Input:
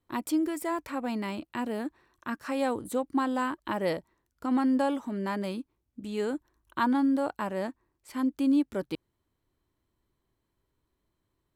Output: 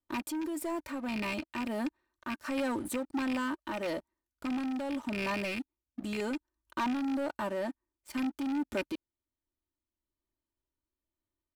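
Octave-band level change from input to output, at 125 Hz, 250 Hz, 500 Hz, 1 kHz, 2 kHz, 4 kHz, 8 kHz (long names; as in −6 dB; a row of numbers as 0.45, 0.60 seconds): −4.5, −5.0, −4.5, −5.5, 0.0, +0.5, −0.5 decibels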